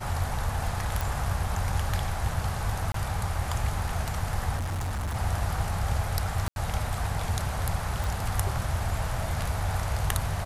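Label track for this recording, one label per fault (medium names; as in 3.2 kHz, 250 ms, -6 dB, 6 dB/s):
1.010000	1.010000	pop
2.920000	2.940000	dropout 23 ms
4.560000	5.160000	clipped -27.5 dBFS
6.480000	6.560000	dropout 81 ms
8.040000	8.040000	pop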